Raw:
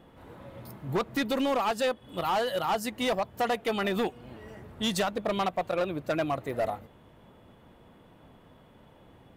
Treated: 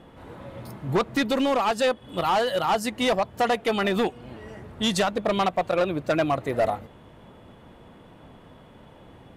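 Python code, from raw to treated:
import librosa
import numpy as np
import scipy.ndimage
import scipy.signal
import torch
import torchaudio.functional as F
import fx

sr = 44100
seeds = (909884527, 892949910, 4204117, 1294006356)

p1 = scipy.signal.sosfilt(scipy.signal.butter(2, 11000.0, 'lowpass', fs=sr, output='sos'), x)
p2 = fx.rider(p1, sr, range_db=10, speed_s=0.5)
p3 = p1 + (p2 * 10.0 ** (0.5 / 20.0))
y = p3 * 10.0 ** (-1.0 / 20.0)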